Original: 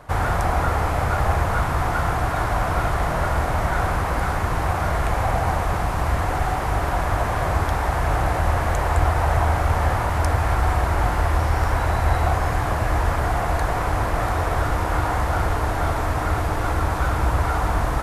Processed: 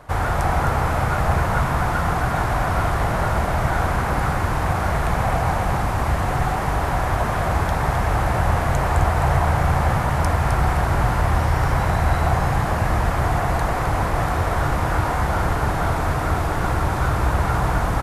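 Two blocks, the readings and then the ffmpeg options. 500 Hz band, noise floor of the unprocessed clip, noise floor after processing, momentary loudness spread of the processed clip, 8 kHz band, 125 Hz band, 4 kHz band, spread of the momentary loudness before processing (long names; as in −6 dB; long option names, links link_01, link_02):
+1.0 dB, −24 dBFS, −23 dBFS, 2 LU, +1.0 dB, +2.0 dB, +1.0 dB, 2 LU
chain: -filter_complex "[0:a]asplit=5[link_01][link_02][link_03][link_04][link_05];[link_02]adelay=260,afreqshift=58,volume=-6.5dB[link_06];[link_03]adelay=520,afreqshift=116,volume=-16.4dB[link_07];[link_04]adelay=780,afreqshift=174,volume=-26.3dB[link_08];[link_05]adelay=1040,afreqshift=232,volume=-36.2dB[link_09];[link_01][link_06][link_07][link_08][link_09]amix=inputs=5:normalize=0"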